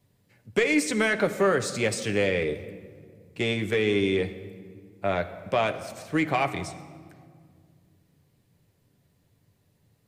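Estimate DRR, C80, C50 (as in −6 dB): 6.0 dB, 14.0 dB, 12.5 dB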